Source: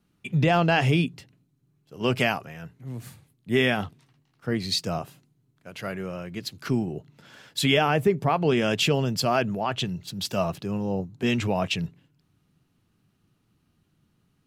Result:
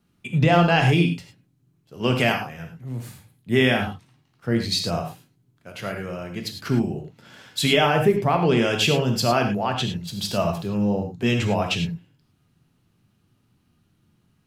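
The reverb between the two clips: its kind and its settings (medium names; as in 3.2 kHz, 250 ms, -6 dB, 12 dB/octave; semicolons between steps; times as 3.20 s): gated-style reverb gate 130 ms flat, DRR 3.5 dB; trim +1.5 dB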